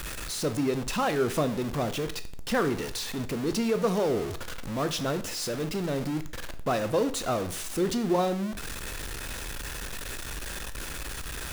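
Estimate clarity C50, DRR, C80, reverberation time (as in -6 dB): 14.5 dB, 10.0 dB, 18.5 dB, 0.50 s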